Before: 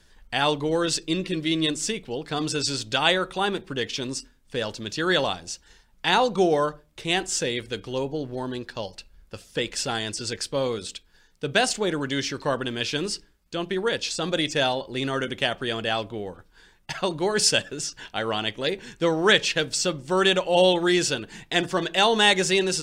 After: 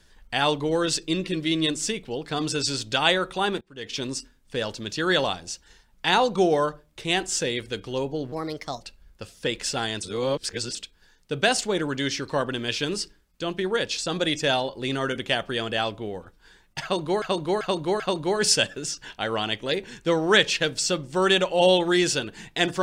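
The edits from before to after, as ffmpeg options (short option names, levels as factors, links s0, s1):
-filter_complex "[0:a]asplit=9[s0][s1][s2][s3][s4][s5][s6][s7][s8];[s0]atrim=end=3.61,asetpts=PTS-STARTPTS,afade=t=out:st=3.606:d=0.004:c=hsin:silence=0.0707946[s9];[s1]atrim=start=3.61:end=8.324,asetpts=PTS-STARTPTS,afade=t=in:d=0.36:c=qua:silence=0.0707946[s10];[s2]atrim=start=8.32:end=8.93,asetpts=PTS-STARTPTS,asetrate=55125,aresample=44100[s11];[s3]atrim=start=8.926:end=10.152[s12];[s4]atrim=start=10.148:end=10.872,asetpts=PTS-STARTPTS,areverse[s13];[s5]atrim=start=10.868:end=17.342[s14];[s6]atrim=start=16.948:end=17.342[s15];[s7]atrim=start=16.948:end=17.342[s16];[s8]atrim=start=16.948[s17];[s9][s10]concat=n=2:v=0:a=1[s18];[s18][s11]acrossfade=d=0.004:c1=hsin:c2=hsin[s19];[s19][s12]acrossfade=d=0.004:c1=hsin:c2=hsin[s20];[s20][s13]acrossfade=d=0.004:c1=hsin:c2=hsin[s21];[s21][s14]acrossfade=d=0.004:c1=hsin:c2=hsin[s22];[s22][s15]acrossfade=d=0.004:c1=hsin:c2=hsin[s23];[s23][s16]acrossfade=d=0.004:c1=hsin:c2=hsin[s24];[s24][s17]acrossfade=d=0.004:c1=hsin:c2=hsin"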